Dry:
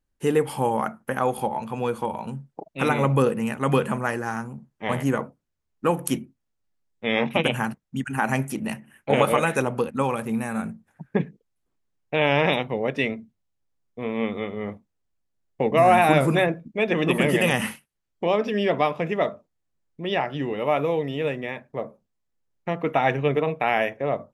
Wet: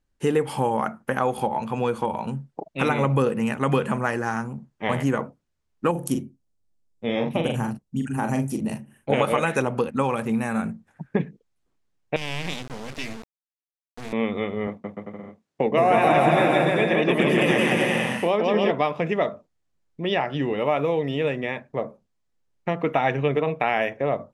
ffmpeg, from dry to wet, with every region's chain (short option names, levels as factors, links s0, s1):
-filter_complex "[0:a]asettb=1/sr,asplit=3[s0][s1][s2];[s0]atrim=end=5.914[s3];[s1]atrim=start=5.91:end=9.12,asetpts=PTS-STARTPTS,afade=t=in:d=0.004:c=qsin,afade=t=out:st=3.206:d=0.004:c=qsin,equalizer=f=1900:t=o:w=2.4:g=-12.5,asplit=2[s4][s5];[s5]adelay=42,volume=0.501[s6];[s4][s6]amix=inputs=2:normalize=0,atrim=end_sample=141561[s7];[s2]atrim=start=9.116[s8];[s3][s7]acrossfade=d=0.004:c1=hsin:c2=qsin[s9];[s9][s8]acrossfade=d=0.004:c1=qsin:c2=hsin,asettb=1/sr,asplit=3[s10][s11][s12];[s10]atrim=end=12.164[s13];[s11]atrim=start=12.16:end=14.13,asetpts=PTS-STARTPTS,afade=t=in:d=0.004:c=qsin,afade=t=out:st=1.966:d=0.004:c=qsin,highpass=f=81:p=1,acrossover=split=200|3000[s14][s15][s16];[s15]acompressor=threshold=0.02:ratio=10:attack=3.2:release=140:knee=2.83:detection=peak[s17];[s14][s17][s16]amix=inputs=3:normalize=0,acrusher=bits=4:dc=4:mix=0:aa=0.000001[s18];[s12]atrim=start=14.126[s19];[s13][s18]acrossfade=d=0.004:c1=hsin:c2=qsin[s20];[s20][s19]acrossfade=d=0.004:c1=qsin:c2=hsin,asettb=1/sr,asplit=3[s21][s22][s23];[s21]atrim=end=14.674[s24];[s22]atrim=start=14.67:end=18.71,asetpts=PTS-STARTPTS,afade=t=in:d=0.004:c=qsin,afade=t=out:st=4.036:d=0.004:c=qsin,highpass=140,highshelf=f=9000:g=-4,aecho=1:1:170|297.5|393.1|464.8|518.6|559|589.2|611.9:0.794|0.631|0.501|0.398|0.316|0.251|0.2|0.158,atrim=end_sample=178164[s25];[s23]atrim=start=18.706[s26];[s24][s25]acrossfade=d=0.004:c1=hsin:c2=qsin[s27];[s27][s26]acrossfade=d=0.004:c1=qsin:c2=hsin,acompressor=threshold=0.0631:ratio=2,lowpass=8800,volume=1.5"